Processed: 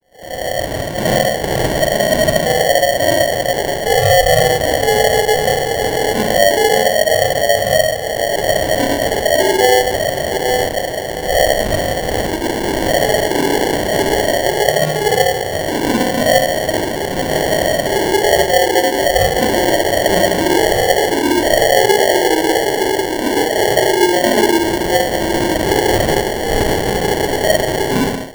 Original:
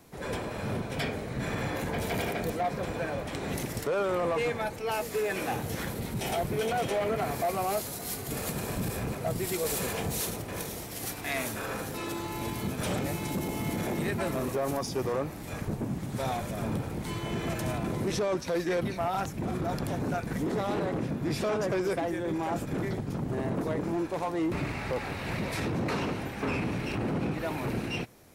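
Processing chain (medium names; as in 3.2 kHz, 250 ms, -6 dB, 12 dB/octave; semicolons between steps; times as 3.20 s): formants replaced by sine waves; echo that smears into a reverb 839 ms, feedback 49%, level -13 dB; compression, threshold -29 dBFS, peak gain reduction 11 dB; 0.55–1.08 s: high-pass 830 Hz 6 dB/octave; Schroeder reverb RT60 1.1 s, combs from 28 ms, DRR -8 dB; level rider gain up to 16 dB; sample-and-hold 35×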